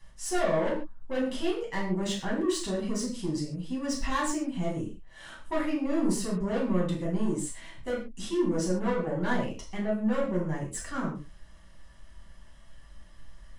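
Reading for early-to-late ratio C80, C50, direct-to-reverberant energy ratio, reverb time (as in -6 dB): 10.5 dB, 6.0 dB, -5.0 dB, no single decay rate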